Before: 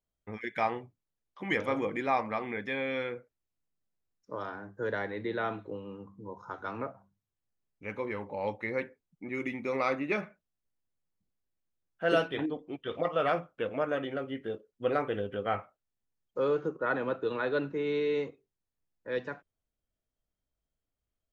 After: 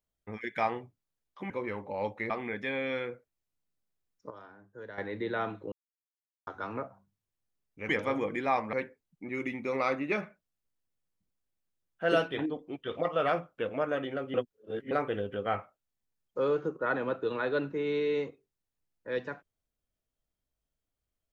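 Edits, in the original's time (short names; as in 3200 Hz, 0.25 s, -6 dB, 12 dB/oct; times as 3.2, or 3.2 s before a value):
1.5–2.34 swap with 7.93–8.73
4.34–5.02 gain -12 dB
5.76–6.51 mute
14.34–14.91 reverse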